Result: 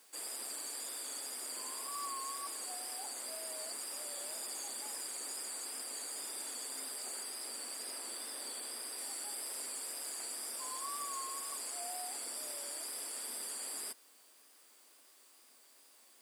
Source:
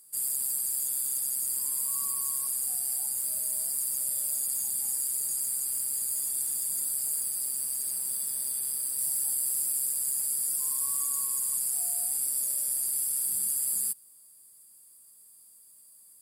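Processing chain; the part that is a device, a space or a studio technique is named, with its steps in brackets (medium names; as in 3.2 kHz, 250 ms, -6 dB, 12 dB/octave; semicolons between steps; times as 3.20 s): tape answering machine (band-pass 300–3400 Hz; saturation -39.5 dBFS, distortion -23 dB; wow and flutter; white noise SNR 22 dB); elliptic high-pass 240 Hz, stop band 40 dB; trim +9 dB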